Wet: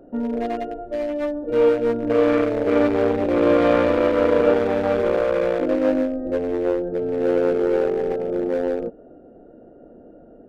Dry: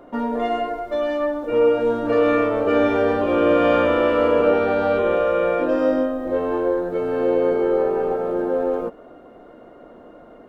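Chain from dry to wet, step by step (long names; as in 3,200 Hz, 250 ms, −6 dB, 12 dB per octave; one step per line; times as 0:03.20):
adaptive Wiener filter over 41 samples
level +1.5 dB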